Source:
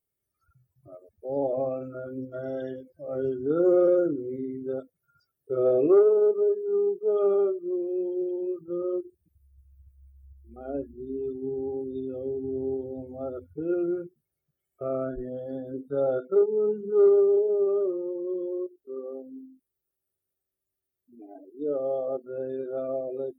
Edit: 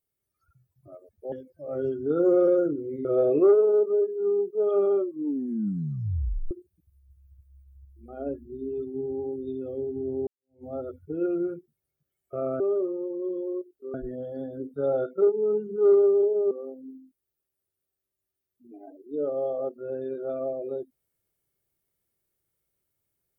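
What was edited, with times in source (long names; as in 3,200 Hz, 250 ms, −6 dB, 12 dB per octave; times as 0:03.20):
0:01.32–0:02.72: remove
0:04.45–0:05.53: remove
0:07.48: tape stop 1.51 s
0:12.75–0:13.12: fade in exponential
0:17.65–0:18.99: move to 0:15.08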